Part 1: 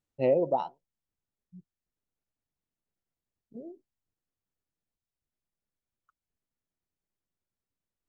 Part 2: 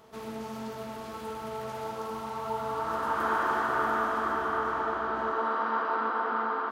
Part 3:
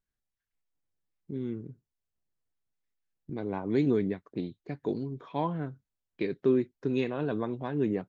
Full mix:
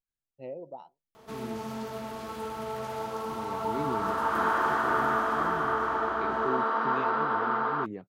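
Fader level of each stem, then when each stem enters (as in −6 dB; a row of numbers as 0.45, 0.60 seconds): −15.5, +1.5, −9.0 decibels; 0.20, 1.15, 0.00 seconds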